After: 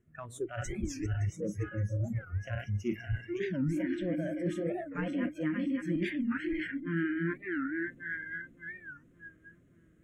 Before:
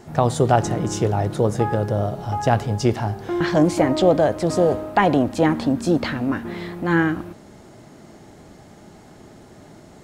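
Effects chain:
feedback delay that plays each chunk backwards 284 ms, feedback 76%, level −5 dB
noise reduction from a noise print of the clip's start 27 dB
low-shelf EQ 200 Hz +10 dB
reversed playback
downward compressor 4 to 1, threshold −32 dBFS, peak gain reduction 19.5 dB
reversed playback
harmonic generator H 6 −45 dB, 8 −39 dB, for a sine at −19 dBFS
phaser with its sweep stopped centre 2,000 Hz, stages 4
wow of a warped record 45 rpm, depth 250 cents
level +1 dB

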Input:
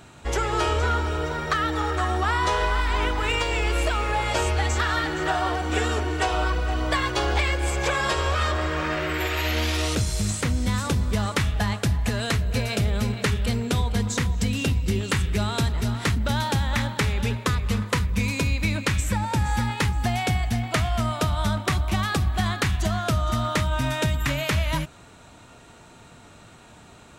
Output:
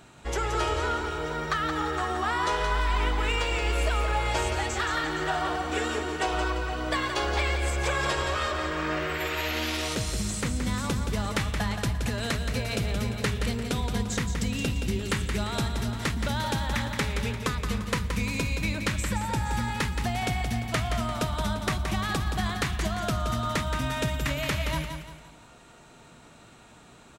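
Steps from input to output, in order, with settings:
parametric band 89 Hz −11.5 dB 0.35 octaves
repeating echo 173 ms, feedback 38%, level −7 dB
level −4 dB

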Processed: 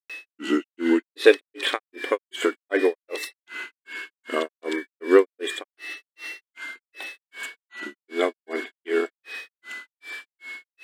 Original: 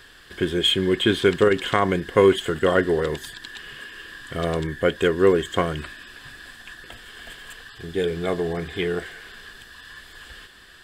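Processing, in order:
linear-phase brick-wall high-pass 240 Hz
steady tone 2,300 Hz −38 dBFS
granular cloud 261 ms, grains 2.6 per second, pitch spread up and down by 3 semitones
level +5 dB

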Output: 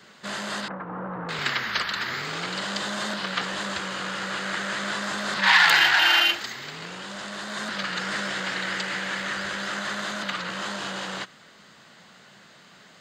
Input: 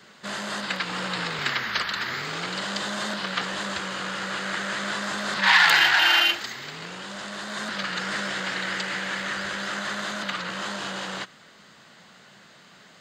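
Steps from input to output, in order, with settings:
0:00.68–0:01.29: low-pass filter 1,200 Hz 24 dB per octave

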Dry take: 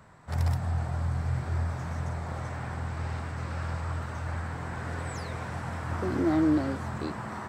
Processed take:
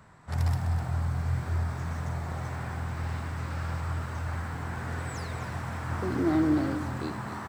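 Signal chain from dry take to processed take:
parametric band 560 Hz −3 dB 0.77 octaves
on a send: single-tap delay 253 ms −11 dB
on the sum: feedback echo at a low word length 80 ms, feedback 35%, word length 8 bits, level −11.5 dB

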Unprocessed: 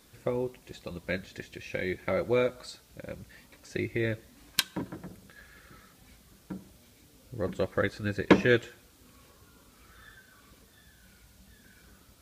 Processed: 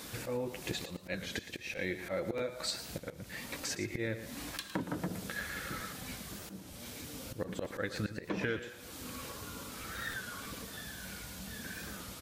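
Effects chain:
high-pass filter 120 Hz 6 dB per octave
notch filter 380 Hz, Q 12
volume swells 393 ms
downward compressor 16 to 1, threshold −46 dBFS, peak gain reduction 23 dB
repeating echo 115 ms, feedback 25%, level −12 dB
regular buffer underruns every 0.31 s, samples 512, repeat, from 0:00.51
wow of a warped record 33 1/3 rpm, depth 100 cents
level +14 dB

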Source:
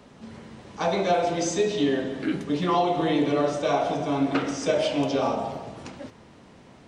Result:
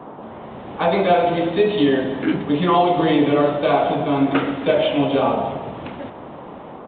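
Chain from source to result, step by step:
automatic gain control gain up to 7 dB
noise in a band 150–1,000 Hz −37 dBFS
downsampling to 8,000 Hz

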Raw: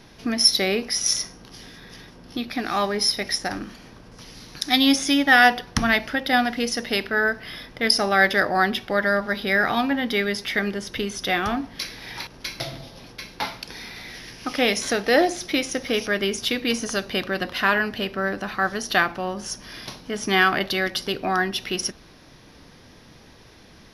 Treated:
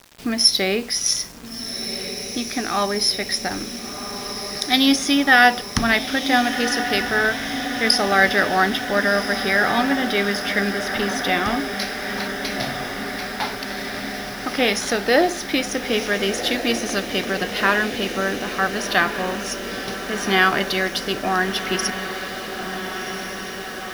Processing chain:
feedback delay with all-pass diffusion 1,445 ms, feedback 72%, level −9 dB
bit reduction 7 bits
level +1.5 dB

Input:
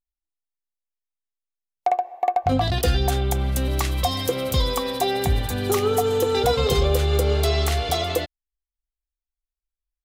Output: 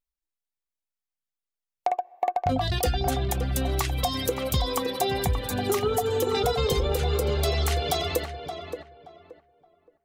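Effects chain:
reverb reduction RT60 0.83 s
downward compressor, threshold −21 dBFS, peak gain reduction 6 dB
tape delay 573 ms, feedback 27%, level −6 dB, low-pass 1,700 Hz

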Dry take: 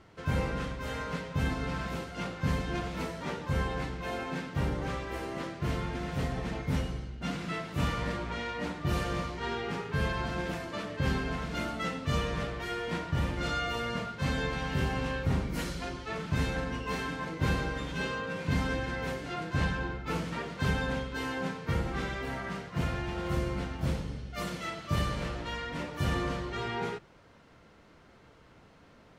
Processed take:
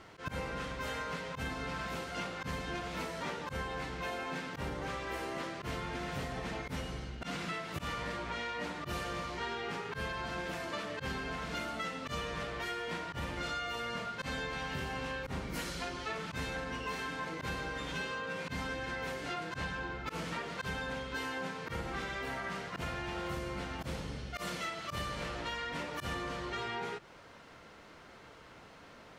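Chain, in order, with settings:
low-shelf EQ 360 Hz −9 dB
volume swells 119 ms
downward compressor, threshold −42 dBFS, peak gain reduction 11.5 dB
level +6.5 dB

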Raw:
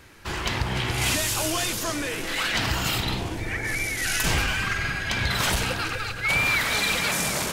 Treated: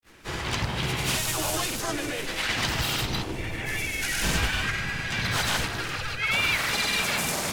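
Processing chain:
granular cloud, pitch spread up and down by 0 semitones
pitch-shifted copies added +3 semitones −5 dB, +7 semitones −10 dB
level −2 dB

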